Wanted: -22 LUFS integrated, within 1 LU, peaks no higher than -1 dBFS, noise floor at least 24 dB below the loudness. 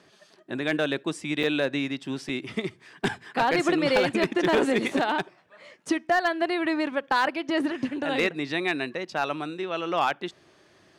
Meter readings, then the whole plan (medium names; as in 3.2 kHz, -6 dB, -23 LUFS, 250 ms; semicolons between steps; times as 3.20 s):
clipped samples 0.3%; clipping level -15.0 dBFS; dropouts 2; longest dropout 5.0 ms; loudness -26.5 LUFS; peak level -15.0 dBFS; loudness target -22.0 LUFS
-> clip repair -15 dBFS; interpolate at 1.43/2.29 s, 5 ms; trim +4.5 dB